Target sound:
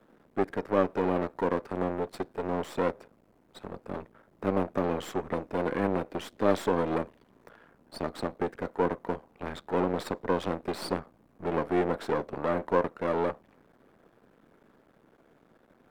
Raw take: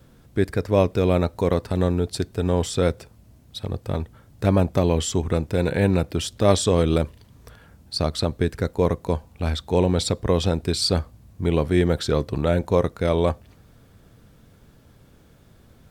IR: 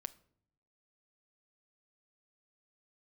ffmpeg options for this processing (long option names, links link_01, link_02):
-filter_complex "[0:a]aeval=exprs='max(val(0),0)':channel_layout=same,acrossover=split=210 2200:gain=0.0891 1 0.158[link_01][link_02][link_03];[link_01][link_02][link_03]amix=inputs=3:normalize=0,volume=1.5dB"